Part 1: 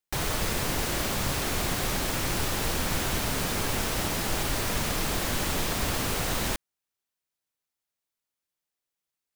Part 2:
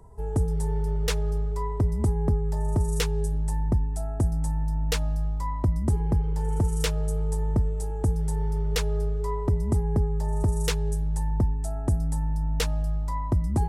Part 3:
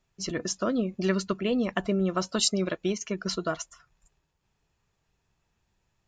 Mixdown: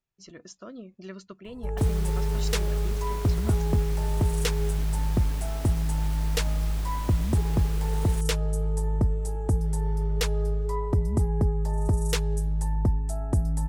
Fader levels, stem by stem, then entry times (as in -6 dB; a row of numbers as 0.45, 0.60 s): -13.5, 0.0, -15.0 dB; 1.65, 1.45, 0.00 s